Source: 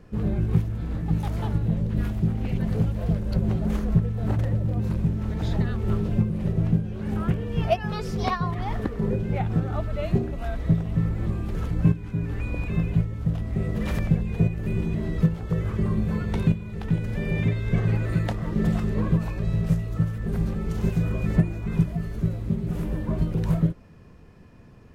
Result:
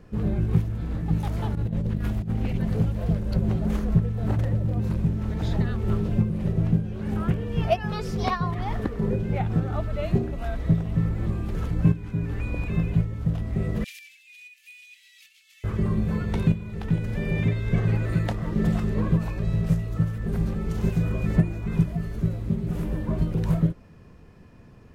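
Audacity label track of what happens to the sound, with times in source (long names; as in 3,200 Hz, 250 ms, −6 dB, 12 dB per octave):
1.550000	2.540000	compressor whose output falls as the input rises −25 dBFS, ratio −0.5
13.840000	15.640000	elliptic high-pass filter 2,400 Hz, stop band 70 dB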